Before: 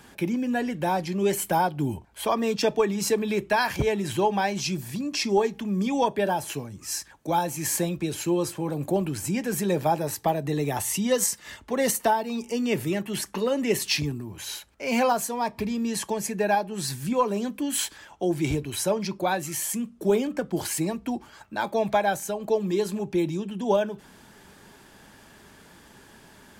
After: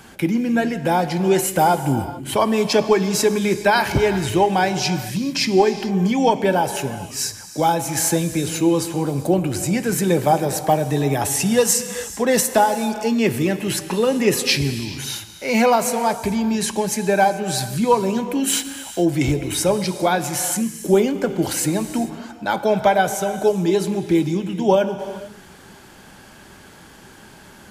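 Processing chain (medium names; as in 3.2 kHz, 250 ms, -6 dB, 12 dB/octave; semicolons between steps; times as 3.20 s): gated-style reverb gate 450 ms flat, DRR 10 dB; speed mistake 25 fps video run at 24 fps; trim +6.5 dB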